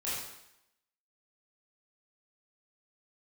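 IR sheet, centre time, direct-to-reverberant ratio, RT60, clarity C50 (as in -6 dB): 72 ms, -10.0 dB, 0.80 s, -0.5 dB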